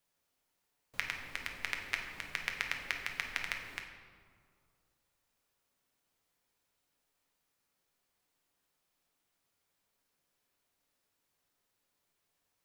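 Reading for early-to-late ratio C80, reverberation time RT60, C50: 7.0 dB, 2.2 s, 5.0 dB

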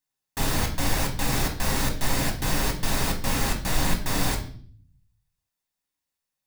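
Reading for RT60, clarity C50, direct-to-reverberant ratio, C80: 0.50 s, 10.0 dB, 1.5 dB, 14.0 dB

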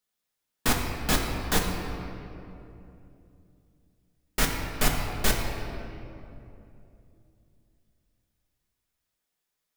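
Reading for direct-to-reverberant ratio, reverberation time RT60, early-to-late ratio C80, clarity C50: -1.0 dB, 2.9 s, 4.0 dB, 3.0 dB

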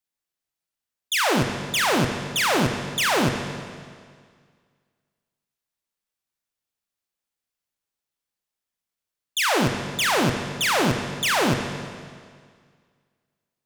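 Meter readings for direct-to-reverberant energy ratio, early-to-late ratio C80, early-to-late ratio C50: 4.0 dB, 7.0 dB, 5.5 dB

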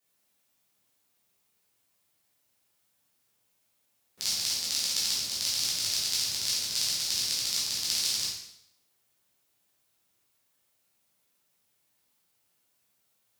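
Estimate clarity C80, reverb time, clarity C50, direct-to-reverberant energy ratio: 5.0 dB, 0.80 s, 1.5 dB, -8.0 dB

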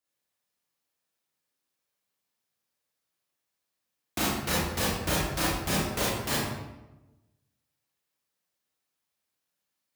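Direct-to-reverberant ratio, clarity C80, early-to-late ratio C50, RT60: -7.5 dB, 1.5 dB, -1.5 dB, 1.0 s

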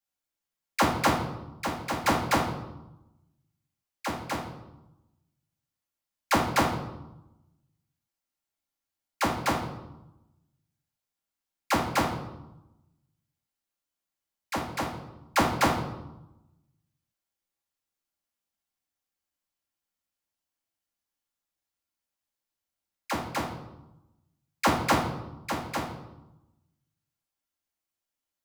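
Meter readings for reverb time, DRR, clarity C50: 1.0 s, -3.5 dB, 5.0 dB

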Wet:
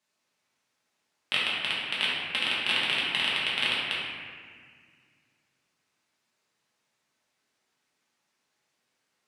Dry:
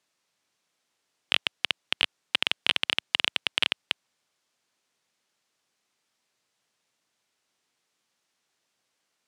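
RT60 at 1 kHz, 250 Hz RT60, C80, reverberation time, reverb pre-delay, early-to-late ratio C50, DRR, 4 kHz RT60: 1.8 s, 2.6 s, 0.5 dB, 1.8 s, 4 ms, -2.0 dB, -8.0 dB, 1.3 s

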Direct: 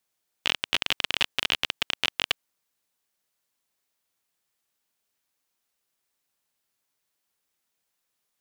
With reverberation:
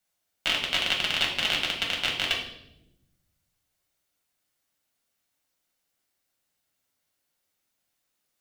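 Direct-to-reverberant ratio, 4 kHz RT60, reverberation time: -2.5 dB, 0.75 s, 0.90 s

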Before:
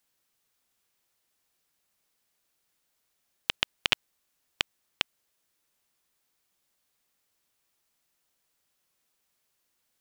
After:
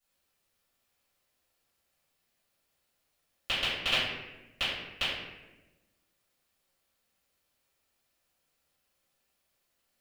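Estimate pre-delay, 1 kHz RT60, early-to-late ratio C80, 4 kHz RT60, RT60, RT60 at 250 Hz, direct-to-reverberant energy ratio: 3 ms, 0.95 s, 2.5 dB, 0.70 s, 1.1 s, 1.5 s, -17.0 dB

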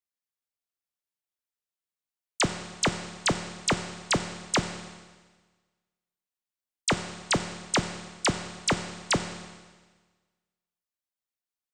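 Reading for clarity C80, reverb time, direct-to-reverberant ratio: 10.5 dB, 1.4 s, 7.0 dB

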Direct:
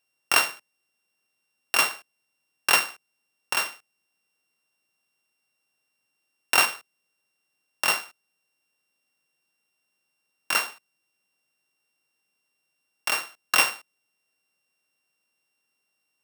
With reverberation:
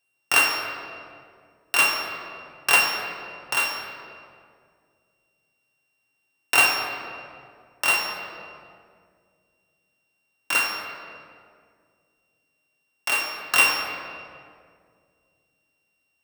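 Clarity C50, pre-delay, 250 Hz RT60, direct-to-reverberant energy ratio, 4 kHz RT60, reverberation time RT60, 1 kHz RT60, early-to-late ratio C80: 3.0 dB, 7 ms, 2.6 s, -1.0 dB, 1.4 s, 2.2 s, 1.9 s, 4.0 dB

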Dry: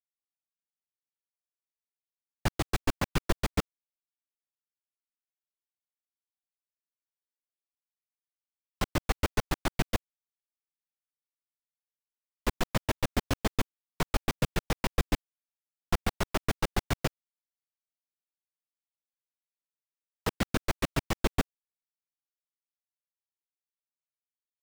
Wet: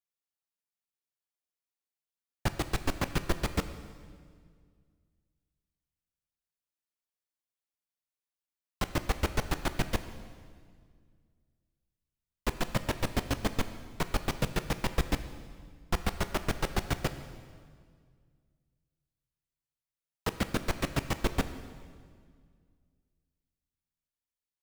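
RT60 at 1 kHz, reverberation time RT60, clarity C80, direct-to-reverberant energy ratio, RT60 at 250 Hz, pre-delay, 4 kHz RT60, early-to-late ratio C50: 1.8 s, 2.0 s, 12.5 dB, 10.0 dB, 2.5 s, 11 ms, 1.7 s, 11.5 dB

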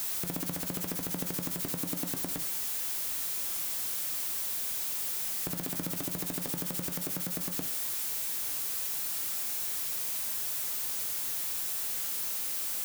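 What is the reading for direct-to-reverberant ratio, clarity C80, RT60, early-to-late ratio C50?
10.0 dB, 19.0 dB, 0.40 s, 14.5 dB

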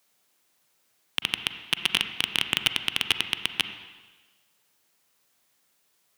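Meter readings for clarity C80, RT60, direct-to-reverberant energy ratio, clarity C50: 10.5 dB, 1.3 s, 8.5 dB, 9.0 dB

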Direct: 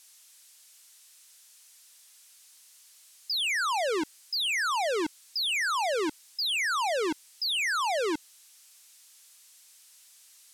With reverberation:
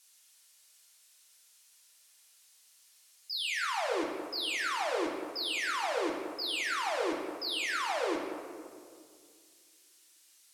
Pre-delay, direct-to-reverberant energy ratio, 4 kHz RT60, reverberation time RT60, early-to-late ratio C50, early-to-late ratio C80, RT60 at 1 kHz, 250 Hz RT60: 3 ms, -2.0 dB, 1.1 s, 2.1 s, 2.5 dB, 4.0 dB, 1.9 s, 2.5 s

